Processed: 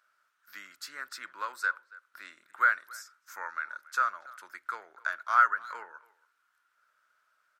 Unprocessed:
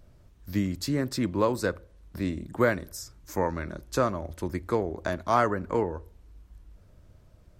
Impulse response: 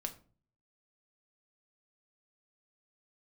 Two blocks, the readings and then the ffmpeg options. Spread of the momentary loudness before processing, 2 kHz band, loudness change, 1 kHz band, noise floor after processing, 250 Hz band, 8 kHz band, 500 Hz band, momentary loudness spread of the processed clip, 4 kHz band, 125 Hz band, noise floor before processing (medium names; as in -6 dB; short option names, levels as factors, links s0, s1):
10 LU, +6.0 dB, -1.5 dB, +1.0 dB, -75 dBFS, under -35 dB, -7.5 dB, -23.5 dB, 22 LU, -7.0 dB, under -40 dB, -56 dBFS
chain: -filter_complex "[0:a]highpass=f=1400:t=q:w=8.7,asplit=2[s0][s1];[s1]adelay=280,highpass=300,lowpass=3400,asoftclip=type=hard:threshold=0.282,volume=0.0891[s2];[s0][s2]amix=inputs=2:normalize=0,volume=0.398"